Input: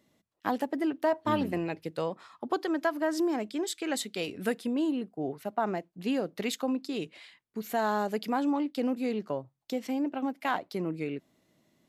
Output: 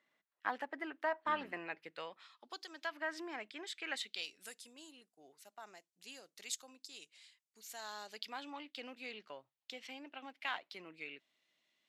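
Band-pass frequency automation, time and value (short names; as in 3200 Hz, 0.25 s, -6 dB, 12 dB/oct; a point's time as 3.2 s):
band-pass, Q 1.5
1.8 s 1700 Hz
2.68 s 6000 Hz
3 s 2100 Hz
3.94 s 2100 Hz
4.4 s 7100 Hz
7.6 s 7100 Hz
8.53 s 2900 Hz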